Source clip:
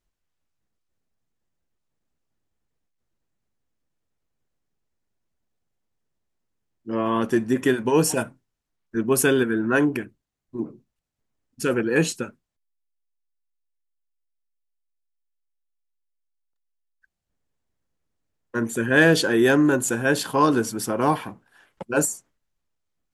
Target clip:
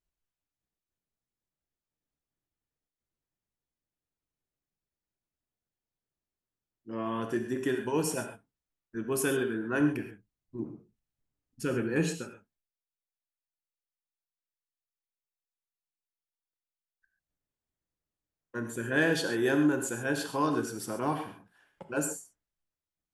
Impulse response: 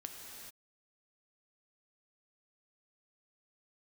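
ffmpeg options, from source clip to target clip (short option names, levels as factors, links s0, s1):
-filter_complex "[0:a]asettb=1/sr,asplit=3[s0][s1][s2];[s0]atrim=end=9.804[s3];[s1]atrim=start=9.8:end=12.12,asetpts=PTS-STARTPTS,afade=t=in:d=0.004:c=qsin,afade=t=out:st=2.316:d=0.004:c=qsin,lowshelf=f=200:g=8.5[s4];[s2]atrim=start=12.116[s5];[s3][s4]acrossfade=d=0.004:c1=hsin:c2=qsin[s6];[s6][s5]acrossfade=d=0.004:c1=qsin:c2=hsin[s7];[1:a]atrim=start_sample=2205,afade=t=out:st=0.19:d=0.01,atrim=end_sample=8820[s8];[s7][s8]afir=irnorm=-1:irlink=0,volume=0.531"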